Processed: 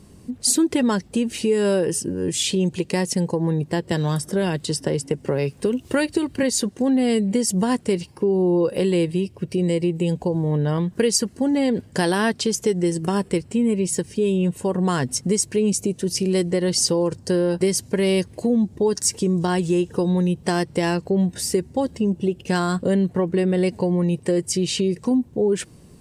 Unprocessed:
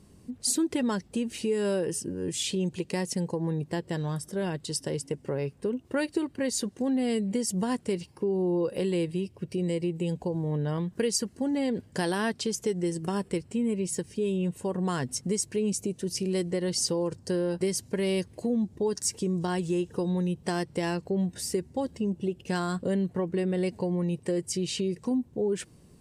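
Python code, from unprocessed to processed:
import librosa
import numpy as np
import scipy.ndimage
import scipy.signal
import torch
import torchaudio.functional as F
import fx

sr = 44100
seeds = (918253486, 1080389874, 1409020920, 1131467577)

y = fx.band_squash(x, sr, depth_pct=70, at=(3.91, 6.43))
y = y * librosa.db_to_amplitude(8.0)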